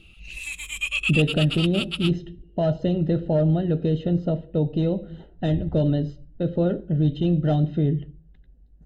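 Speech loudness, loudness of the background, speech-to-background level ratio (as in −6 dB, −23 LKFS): −24.0 LKFS, −27.5 LKFS, 3.5 dB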